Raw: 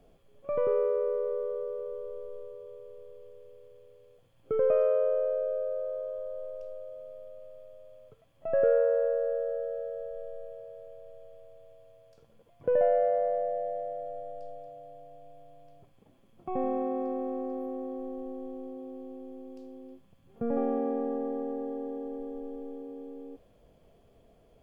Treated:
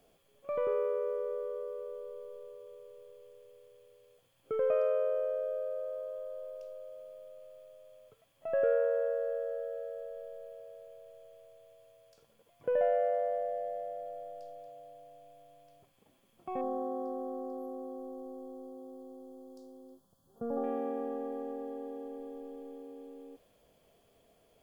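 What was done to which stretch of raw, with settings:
16.61–20.64 Butterworth band-stop 2300 Hz, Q 0.87
whole clip: tilt +2.5 dB/oct; gain -2 dB

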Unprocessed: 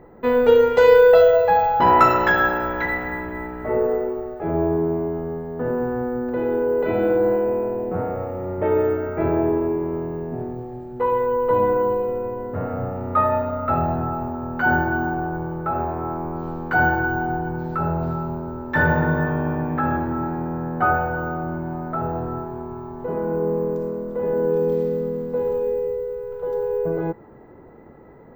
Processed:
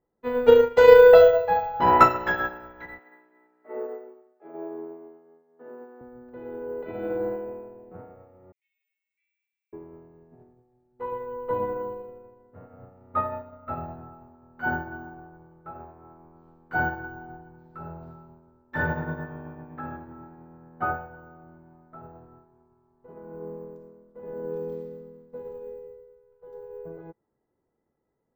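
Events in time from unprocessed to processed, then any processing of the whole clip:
2.99–6.01 HPF 260 Hz 24 dB/oct
8.52–9.73 steep high-pass 2200 Hz 72 dB/oct
whole clip: upward expander 2.5:1, over -33 dBFS; gain +2 dB

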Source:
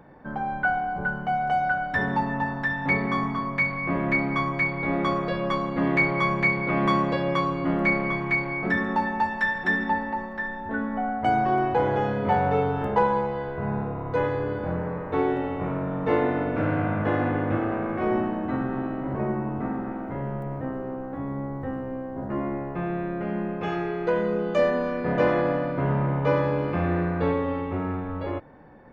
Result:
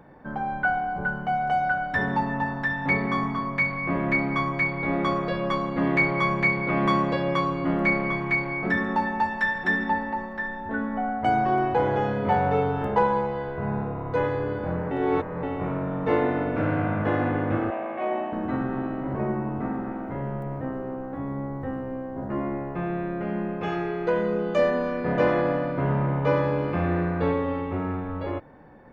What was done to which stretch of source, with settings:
14.91–15.43 reverse
17.7–18.33 speaker cabinet 420–3900 Hz, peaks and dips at 440 Hz -9 dB, 630 Hz +7 dB, 1400 Hz -9 dB, 2700 Hz +3 dB

